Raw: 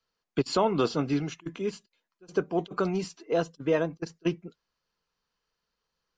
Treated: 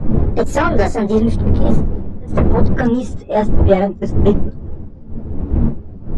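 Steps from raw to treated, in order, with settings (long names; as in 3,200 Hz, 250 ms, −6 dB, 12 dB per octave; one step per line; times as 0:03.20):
pitch glide at a constant tempo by +8.5 semitones ending unshifted
wind on the microphone 270 Hz −35 dBFS
spectral tilt −3 dB per octave
sine wavefolder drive 8 dB, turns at −5.5 dBFS
string-ensemble chorus
level +1.5 dB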